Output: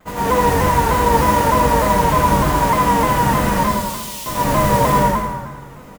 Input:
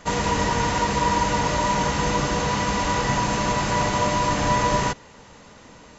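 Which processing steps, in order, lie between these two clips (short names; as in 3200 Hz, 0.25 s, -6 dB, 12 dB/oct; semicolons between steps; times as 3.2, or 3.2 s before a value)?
bell 5400 Hz -13.5 dB 1.6 oct; modulation noise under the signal 13 dB; 3.51–4.26 inverse Chebyshev high-pass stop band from 890 Hz, stop band 60 dB; feedback echo 83 ms, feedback 50%, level -4 dB; plate-style reverb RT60 1.5 s, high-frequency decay 0.6×, pre-delay 85 ms, DRR -8 dB; shaped vibrato saw down 3.3 Hz, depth 100 cents; gain -3.5 dB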